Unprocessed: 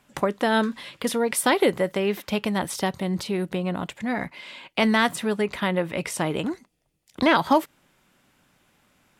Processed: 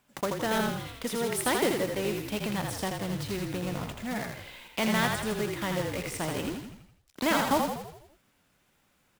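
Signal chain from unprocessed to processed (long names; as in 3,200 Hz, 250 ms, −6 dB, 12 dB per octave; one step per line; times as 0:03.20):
one scale factor per block 3 bits
echo with shifted repeats 82 ms, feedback 53%, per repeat −39 Hz, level −4 dB
level −8 dB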